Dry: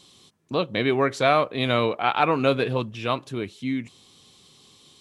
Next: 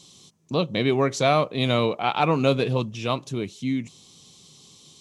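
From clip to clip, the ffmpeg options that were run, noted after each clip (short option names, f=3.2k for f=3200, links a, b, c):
-af "equalizer=f=160:t=o:w=0.67:g=7,equalizer=f=1.6k:t=o:w=0.67:g=-7,equalizer=f=6.3k:t=o:w=0.67:g=9"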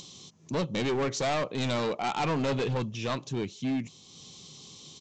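-af "acompressor=mode=upward:threshold=-39dB:ratio=2.5,aresample=16000,volume=23.5dB,asoftclip=hard,volume=-23.5dB,aresample=44100,volume=-2dB"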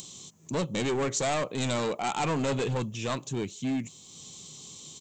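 -af "aexciter=amount=5.7:drive=5.9:freq=7.3k"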